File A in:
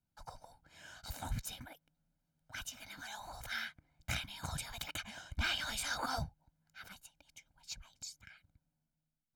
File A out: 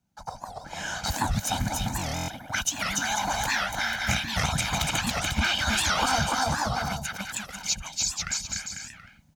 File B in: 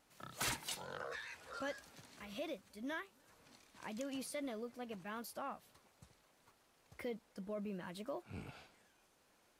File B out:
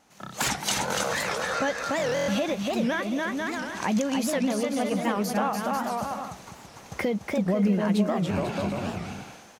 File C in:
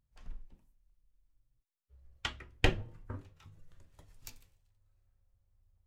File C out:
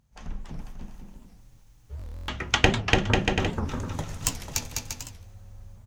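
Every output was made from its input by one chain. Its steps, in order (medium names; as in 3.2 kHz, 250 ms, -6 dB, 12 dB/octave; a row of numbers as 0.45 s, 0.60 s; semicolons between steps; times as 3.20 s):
level rider gain up to 12 dB; high-pass 56 Hz 6 dB/octave; treble shelf 5.7 kHz -6 dB; bouncing-ball echo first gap 290 ms, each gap 0.7×, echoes 5; compression 2.5:1, threshold -37 dBFS; graphic EQ with 31 bands 200 Hz +8 dB, 800 Hz +5 dB, 6.3 kHz +8 dB; buffer glitch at 1.98 s, samples 1024, times 12; warped record 78 rpm, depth 250 cents; normalise loudness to -27 LUFS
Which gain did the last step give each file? +9.0 dB, +9.5 dB, +13.5 dB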